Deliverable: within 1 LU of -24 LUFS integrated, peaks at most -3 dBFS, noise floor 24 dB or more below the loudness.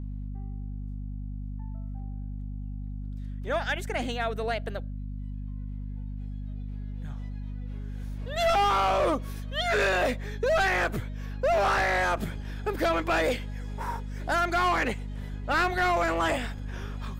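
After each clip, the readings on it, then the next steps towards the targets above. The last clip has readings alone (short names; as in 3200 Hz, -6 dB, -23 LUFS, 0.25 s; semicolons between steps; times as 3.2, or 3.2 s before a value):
hum 50 Hz; harmonics up to 250 Hz; hum level -33 dBFS; loudness -29.5 LUFS; peak -17.5 dBFS; loudness target -24.0 LUFS
-> de-hum 50 Hz, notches 5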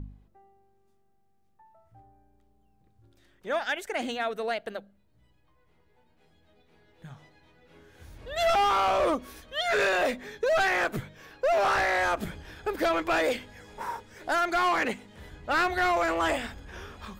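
hum none; loudness -27.5 LUFS; peak -19.0 dBFS; loudness target -24.0 LUFS
-> gain +3.5 dB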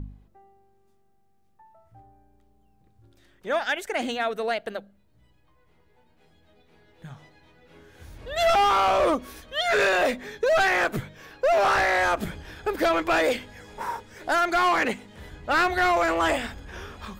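loudness -24.0 LUFS; peak -15.5 dBFS; noise floor -62 dBFS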